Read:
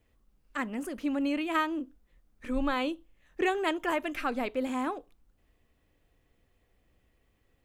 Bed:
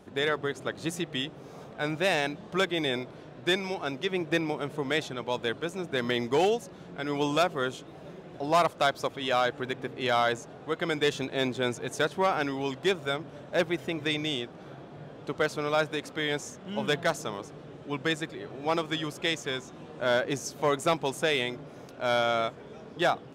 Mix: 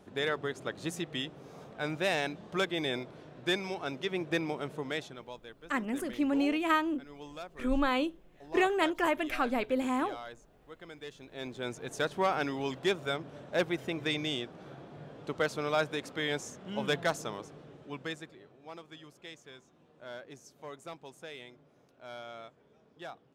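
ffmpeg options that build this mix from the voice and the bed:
ffmpeg -i stem1.wav -i stem2.wav -filter_complex "[0:a]adelay=5150,volume=1dB[link_01];[1:a]volume=12dB,afade=type=out:start_time=4.63:duration=0.8:silence=0.177828,afade=type=in:start_time=11.21:duration=1:silence=0.158489,afade=type=out:start_time=17.17:duration=1.39:silence=0.158489[link_02];[link_01][link_02]amix=inputs=2:normalize=0" out.wav

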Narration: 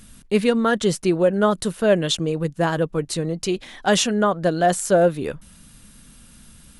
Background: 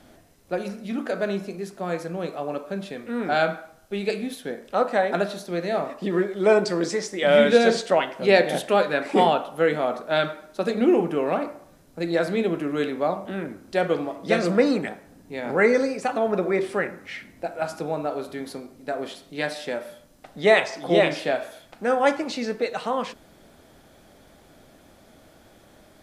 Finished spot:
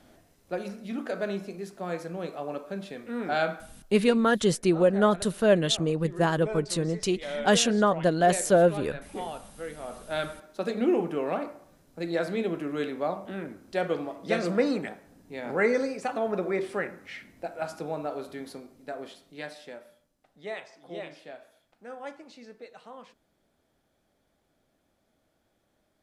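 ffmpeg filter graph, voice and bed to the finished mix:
ffmpeg -i stem1.wav -i stem2.wav -filter_complex "[0:a]adelay=3600,volume=-3.5dB[link_01];[1:a]volume=7dB,afade=type=out:start_time=3.53:duration=0.74:silence=0.237137,afade=type=in:start_time=9.77:duration=0.66:silence=0.251189,afade=type=out:start_time=18.31:duration=1.84:silence=0.188365[link_02];[link_01][link_02]amix=inputs=2:normalize=0" out.wav

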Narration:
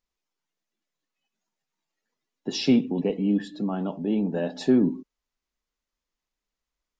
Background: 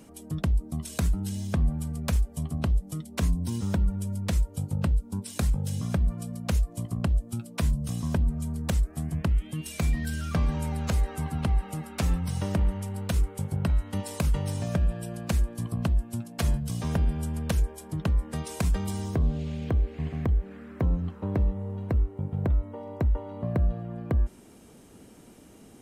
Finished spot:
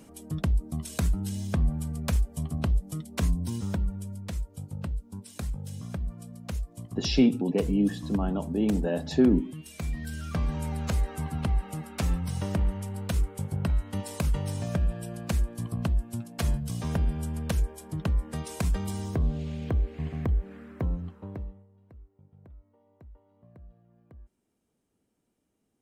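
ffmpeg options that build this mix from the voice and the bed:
ffmpeg -i stem1.wav -i stem2.wav -filter_complex "[0:a]adelay=4500,volume=-1dB[link_01];[1:a]volume=6dB,afade=type=out:start_time=3.31:duration=0.93:silence=0.421697,afade=type=in:start_time=9.73:duration=1:silence=0.473151,afade=type=out:start_time=20.58:duration=1.09:silence=0.0595662[link_02];[link_01][link_02]amix=inputs=2:normalize=0" out.wav

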